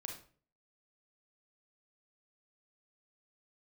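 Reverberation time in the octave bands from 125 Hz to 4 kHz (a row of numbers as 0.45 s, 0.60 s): 0.60 s, 0.50 s, 0.50 s, 0.40 s, 0.40 s, 0.35 s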